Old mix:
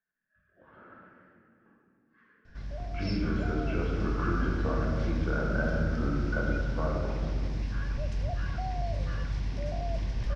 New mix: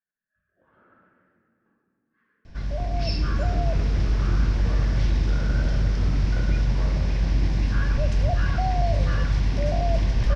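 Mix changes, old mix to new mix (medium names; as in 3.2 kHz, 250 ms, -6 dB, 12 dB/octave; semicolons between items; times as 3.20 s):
speech -6.5 dB; background +10.0 dB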